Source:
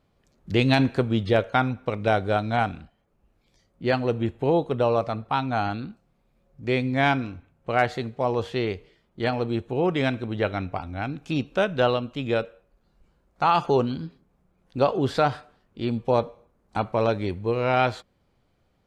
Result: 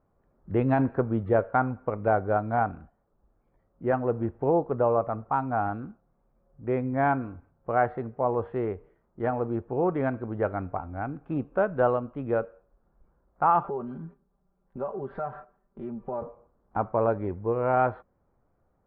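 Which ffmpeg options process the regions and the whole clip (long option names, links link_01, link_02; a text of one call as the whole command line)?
ffmpeg -i in.wav -filter_complex "[0:a]asettb=1/sr,asplit=3[link_01][link_02][link_03];[link_01]atrim=end=13.634[link_04];[link_02]atrim=start=13.63:end=16.22,asetpts=PTS-STARTPTS,afade=type=in:duration=0.004:curve=qsin,afade=type=out:start_time=2.586:duration=0.004:curve=qsin,agate=range=-7dB:threshold=-51dB:ratio=16:release=100:detection=peak,aecho=1:1:5.1:0.82,atrim=end_sample=114219,acompressor=threshold=-33dB:ratio=2.5:attack=3.2:release=140:knee=1:detection=peak[link_05];[link_03]atrim=start=16.216[link_06];[link_04][link_05]acrossfade=duration=0.004:curve1=hsin:curve2=qsin[link_07];[link_07][link_06]acrossfade=duration=0.004:curve1=qsin:curve2=hsin,lowpass=frequency=1400:width=0.5412,lowpass=frequency=1400:width=1.3066,equalizer=frequency=150:width_type=o:width=2.7:gain=-4.5" out.wav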